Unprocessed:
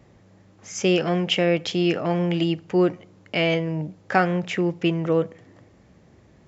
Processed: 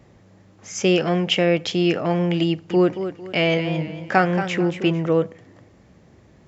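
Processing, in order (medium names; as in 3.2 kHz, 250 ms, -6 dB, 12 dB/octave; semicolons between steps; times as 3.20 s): 2.48–5.03 s: modulated delay 225 ms, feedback 34%, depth 100 cents, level -10 dB; trim +2 dB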